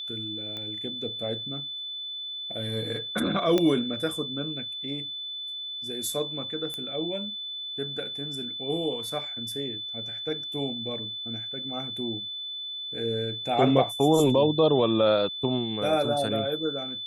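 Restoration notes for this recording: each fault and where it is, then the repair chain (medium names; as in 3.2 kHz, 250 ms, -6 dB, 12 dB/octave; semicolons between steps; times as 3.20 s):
whine 3.5 kHz -33 dBFS
0.57 s: pop -23 dBFS
3.58 s: pop -11 dBFS
6.74 s: pop -19 dBFS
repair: de-click; band-stop 3.5 kHz, Q 30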